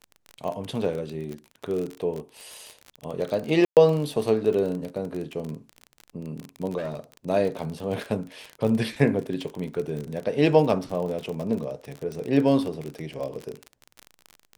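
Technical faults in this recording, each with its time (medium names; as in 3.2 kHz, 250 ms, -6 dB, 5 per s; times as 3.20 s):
crackle 33 per s -29 dBFS
3.65–3.77 s: dropout 118 ms
6.77–7.17 s: clipped -27.5 dBFS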